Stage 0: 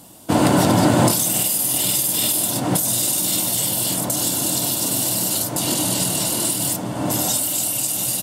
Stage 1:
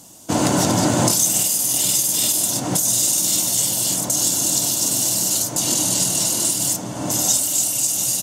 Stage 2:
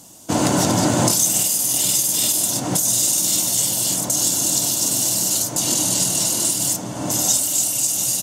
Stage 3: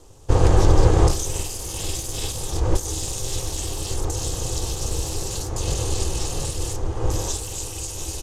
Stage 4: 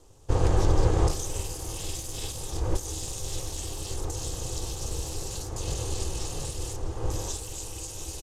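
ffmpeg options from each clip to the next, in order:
-af "equalizer=f=6.4k:w=2:g=13,volume=-3dB"
-af anull
-af "aeval=exprs='val(0)*sin(2*PI*200*n/s)':c=same,aemphasis=mode=reproduction:type=bsi,volume=-1dB"
-af "aecho=1:1:656:0.15,volume=-7dB"

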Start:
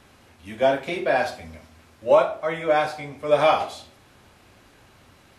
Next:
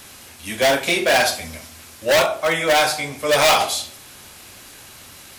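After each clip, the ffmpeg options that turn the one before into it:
-af "bandreject=f=50:t=h:w=6,bandreject=f=100:t=h:w=6,bandreject=f=150:t=h:w=6,asoftclip=type=hard:threshold=-19.5dB,crystalizer=i=5.5:c=0,volume=5dB"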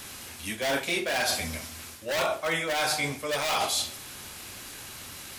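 -af "equalizer=f=630:t=o:w=0.77:g=-2.5,areverse,acompressor=threshold=-24dB:ratio=16,areverse"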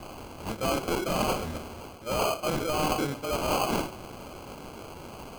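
-af "acrusher=samples=24:mix=1:aa=0.000001"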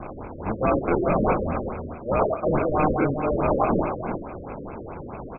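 -filter_complex "[0:a]asplit=2[a][b];[b]aecho=0:1:359:0.376[c];[a][c]amix=inputs=2:normalize=0,afftfilt=real='re*lt(b*sr/1024,570*pow(2700/570,0.5+0.5*sin(2*PI*4.7*pts/sr)))':imag='im*lt(b*sr/1024,570*pow(2700/570,0.5+0.5*sin(2*PI*4.7*pts/sr)))':win_size=1024:overlap=0.75,volume=7dB"

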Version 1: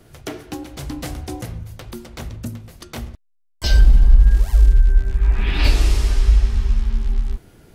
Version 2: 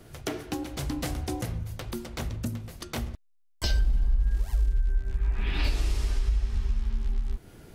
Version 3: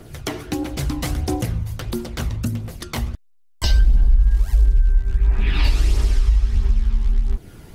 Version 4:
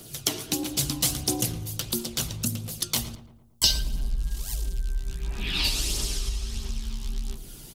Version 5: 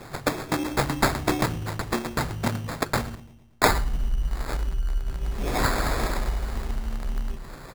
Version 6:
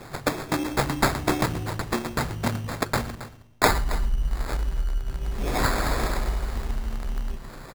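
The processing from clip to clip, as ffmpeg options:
-af "acompressor=threshold=-26dB:ratio=2.5,volume=-1dB"
-af "aphaser=in_gain=1:out_gain=1:delay=1.1:decay=0.36:speed=1.5:type=triangular,volume=6dB"
-filter_complex "[0:a]lowshelf=f=100:t=q:w=1.5:g=-7,asplit=2[a][b];[b]adelay=113,lowpass=f=1.7k:p=1,volume=-12dB,asplit=2[c][d];[d]adelay=113,lowpass=f=1.7k:p=1,volume=0.55,asplit=2[e][f];[f]adelay=113,lowpass=f=1.7k:p=1,volume=0.55,asplit=2[g][h];[h]adelay=113,lowpass=f=1.7k:p=1,volume=0.55,asplit=2[i][j];[j]adelay=113,lowpass=f=1.7k:p=1,volume=0.55,asplit=2[k][l];[l]adelay=113,lowpass=f=1.7k:p=1,volume=0.55[m];[a][c][e][g][i][k][m]amix=inputs=7:normalize=0,aexciter=amount=5.7:drive=3.3:freq=2.8k,volume=-7dB"
-af "acrusher=samples=15:mix=1:aa=0.000001,volume=2.5dB"
-af "aecho=1:1:272:0.188"

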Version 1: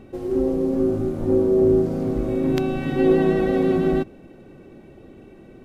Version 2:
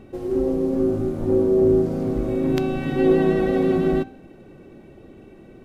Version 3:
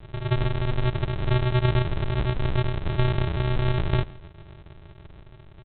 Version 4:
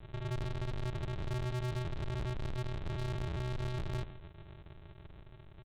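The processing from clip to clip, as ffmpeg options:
-af "bandreject=f=259.6:t=h:w=4,bandreject=f=519.2:t=h:w=4,bandreject=f=778.8:t=h:w=4,bandreject=f=1.0384k:t=h:w=4,bandreject=f=1.298k:t=h:w=4,bandreject=f=1.5576k:t=h:w=4,bandreject=f=1.8172k:t=h:w=4,bandreject=f=2.0768k:t=h:w=4,bandreject=f=2.3364k:t=h:w=4,bandreject=f=2.596k:t=h:w=4,bandreject=f=2.8556k:t=h:w=4,bandreject=f=3.1152k:t=h:w=4,bandreject=f=3.3748k:t=h:w=4,bandreject=f=3.6344k:t=h:w=4,bandreject=f=3.894k:t=h:w=4,bandreject=f=4.1536k:t=h:w=4,bandreject=f=4.4132k:t=h:w=4,bandreject=f=4.6728k:t=h:w=4,bandreject=f=4.9324k:t=h:w=4,bandreject=f=5.192k:t=h:w=4,bandreject=f=5.4516k:t=h:w=4,bandreject=f=5.7112k:t=h:w=4,bandreject=f=5.9708k:t=h:w=4,bandreject=f=6.2304k:t=h:w=4,bandreject=f=6.49k:t=h:w=4,bandreject=f=6.7496k:t=h:w=4,bandreject=f=7.0092k:t=h:w=4,bandreject=f=7.2688k:t=h:w=4,bandreject=f=7.5284k:t=h:w=4,bandreject=f=7.788k:t=h:w=4,bandreject=f=8.0476k:t=h:w=4,bandreject=f=8.3072k:t=h:w=4"
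-filter_complex "[0:a]acrossover=split=130|3000[a][b][c];[b]acompressor=threshold=-20dB:ratio=4[d];[a][d][c]amix=inputs=3:normalize=0,aresample=8000,acrusher=samples=32:mix=1:aa=0.000001,aresample=44100,aecho=1:1:166:0.0668"
-af "asoftclip=type=tanh:threshold=-27dB,volume=-6.5dB"

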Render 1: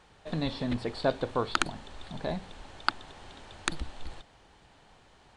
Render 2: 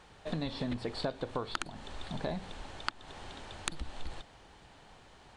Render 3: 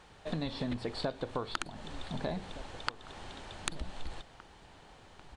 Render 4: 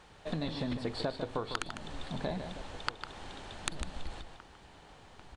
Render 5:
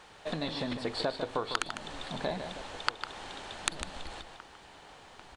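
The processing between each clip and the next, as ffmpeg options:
-af "acompressor=threshold=-33dB:ratio=12,volume=2dB"
-filter_complex "[0:a]asplit=2[a][b];[b]adelay=1516,volume=-15dB,highshelf=f=4k:g=-34.1[c];[a][c]amix=inputs=2:normalize=0"
-filter_complex "[0:a]asplit=2[a][b];[b]adelay=151.6,volume=-8dB,highshelf=f=4k:g=-3.41[c];[a][c]amix=inputs=2:normalize=0"
-af "lowshelf=f=250:g=-11,volume=5dB"

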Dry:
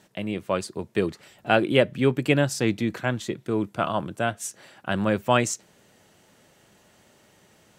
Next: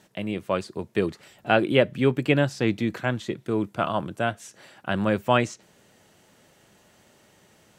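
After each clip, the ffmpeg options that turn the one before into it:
-filter_complex "[0:a]acrossover=split=4500[a][b];[b]acompressor=threshold=-47dB:ratio=4:attack=1:release=60[c];[a][c]amix=inputs=2:normalize=0"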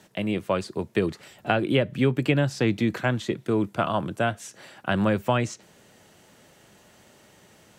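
-filter_complex "[0:a]acrossover=split=160[a][b];[b]acompressor=threshold=-22dB:ratio=10[c];[a][c]amix=inputs=2:normalize=0,volume=3dB"

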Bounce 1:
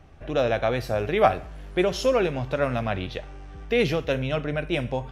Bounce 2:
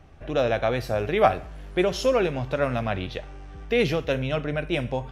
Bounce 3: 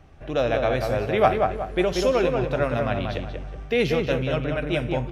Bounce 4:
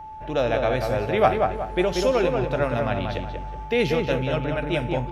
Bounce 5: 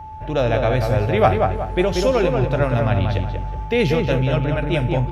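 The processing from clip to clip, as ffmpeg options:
-af anull
-filter_complex "[0:a]asplit=2[a][b];[b]adelay=185,lowpass=f=1.9k:p=1,volume=-3.5dB,asplit=2[c][d];[d]adelay=185,lowpass=f=1.9k:p=1,volume=0.4,asplit=2[e][f];[f]adelay=185,lowpass=f=1.9k:p=1,volume=0.4,asplit=2[g][h];[h]adelay=185,lowpass=f=1.9k:p=1,volume=0.4,asplit=2[i][j];[j]adelay=185,lowpass=f=1.9k:p=1,volume=0.4[k];[a][c][e][g][i][k]amix=inputs=6:normalize=0"
-af "aeval=exprs='val(0)+0.0158*sin(2*PI*870*n/s)':c=same"
-af "equalizer=f=86:t=o:w=1.4:g=11.5,volume=2.5dB"

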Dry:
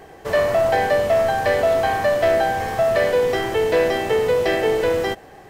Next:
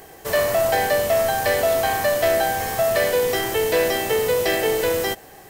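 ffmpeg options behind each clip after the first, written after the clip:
-af "aemphasis=mode=production:type=75fm,volume=-1.5dB"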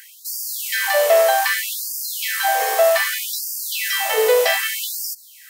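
-af "acontrast=44,afftfilt=real='re*gte(b*sr/1024,380*pow(4600/380,0.5+0.5*sin(2*PI*0.64*pts/sr)))':imag='im*gte(b*sr/1024,380*pow(4600/380,0.5+0.5*sin(2*PI*0.64*pts/sr)))':win_size=1024:overlap=0.75"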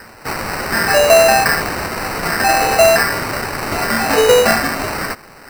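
-af "acrusher=samples=13:mix=1:aa=0.000001,volume=5dB"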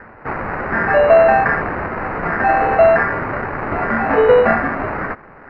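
-af "lowpass=f=1.9k:w=0.5412,lowpass=f=1.9k:w=1.3066"

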